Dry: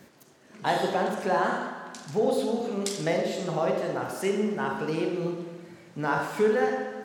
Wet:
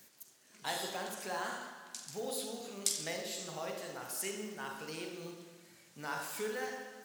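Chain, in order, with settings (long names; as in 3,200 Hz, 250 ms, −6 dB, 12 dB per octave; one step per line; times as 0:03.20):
floating-point word with a short mantissa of 6 bits
first-order pre-emphasis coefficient 0.9
level +2.5 dB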